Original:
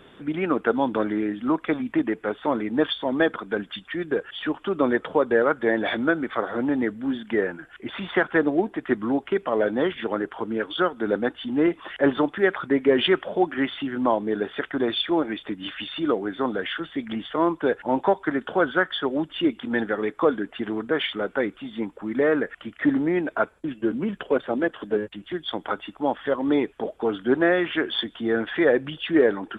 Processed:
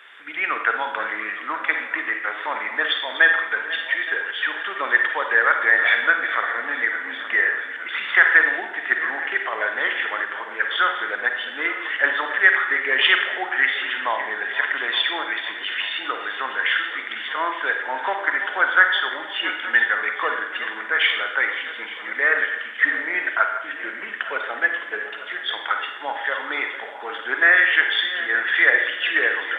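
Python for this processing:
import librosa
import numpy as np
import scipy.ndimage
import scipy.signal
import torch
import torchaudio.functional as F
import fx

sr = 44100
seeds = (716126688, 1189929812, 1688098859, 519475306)

y = fx.reverse_delay_fb(x, sr, ms=435, feedback_pct=72, wet_db=-13.5)
y = scipy.signal.sosfilt(scipy.signal.butter(2, 1000.0, 'highpass', fs=sr, output='sos'), y)
y = fx.peak_eq(y, sr, hz=1900.0, db=12.5, octaves=1.0)
y = fx.rev_schroeder(y, sr, rt60_s=0.79, comb_ms=38, drr_db=4.5)
y = F.gain(torch.from_numpy(y), 1.0).numpy()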